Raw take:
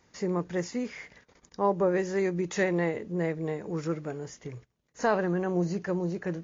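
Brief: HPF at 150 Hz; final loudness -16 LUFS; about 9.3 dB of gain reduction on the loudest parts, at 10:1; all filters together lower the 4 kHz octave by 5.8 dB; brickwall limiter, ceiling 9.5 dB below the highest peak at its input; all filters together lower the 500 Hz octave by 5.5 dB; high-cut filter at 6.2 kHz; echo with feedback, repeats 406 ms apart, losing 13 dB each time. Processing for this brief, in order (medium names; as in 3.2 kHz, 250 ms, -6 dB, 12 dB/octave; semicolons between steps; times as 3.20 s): high-pass 150 Hz; low-pass 6.2 kHz; peaking EQ 500 Hz -7.5 dB; peaking EQ 4 kHz -6.5 dB; compression 10:1, threshold -33 dBFS; peak limiter -30.5 dBFS; feedback delay 406 ms, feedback 22%, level -13 dB; trim +25 dB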